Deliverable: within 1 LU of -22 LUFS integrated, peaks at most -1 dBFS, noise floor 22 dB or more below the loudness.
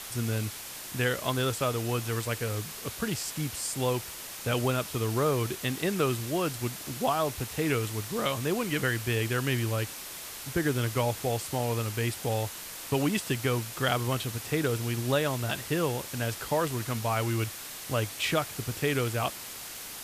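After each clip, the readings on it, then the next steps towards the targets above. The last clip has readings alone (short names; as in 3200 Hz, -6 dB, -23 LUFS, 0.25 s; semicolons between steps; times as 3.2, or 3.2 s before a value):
noise floor -41 dBFS; noise floor target -52 dBFS; loudness -30.0 LUFS; peak -11.5 dBFS; loudness target -22.0 LUFS
-> denoiser 11 dB, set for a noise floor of -41 dBFS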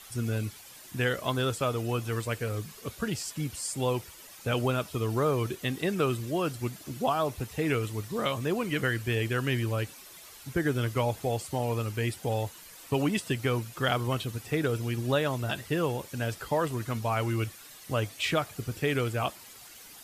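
noise floor -49 dBFS; noise floor target -53 dBFS
-> denoiser 6 dB, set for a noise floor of -49 dBFS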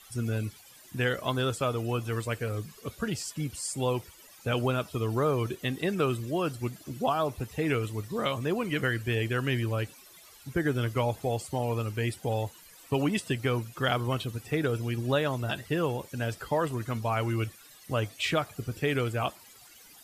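noise floor -54 dBFS; loudness -30.5 LUFS; peak -12.0 dBFS; loudness target -22.0 LUFS
-> gain +8.5 dB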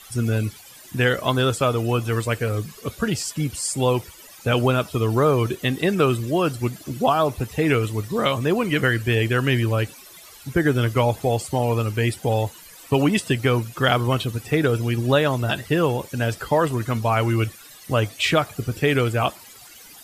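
loudness -22.0 LUFS; peak -3.5 dBFS; noise floor -45 dBFS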